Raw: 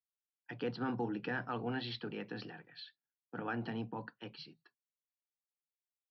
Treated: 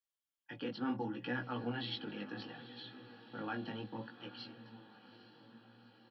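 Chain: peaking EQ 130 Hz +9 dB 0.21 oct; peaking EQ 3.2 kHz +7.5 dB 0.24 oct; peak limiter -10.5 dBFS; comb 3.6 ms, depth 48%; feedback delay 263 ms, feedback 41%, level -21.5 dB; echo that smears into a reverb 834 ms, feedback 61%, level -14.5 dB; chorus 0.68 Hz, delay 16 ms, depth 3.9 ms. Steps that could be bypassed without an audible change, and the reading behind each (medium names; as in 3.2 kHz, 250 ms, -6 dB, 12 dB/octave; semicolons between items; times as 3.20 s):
peak limiter -10.5 dBFS: peak at its input -23.5 dBFS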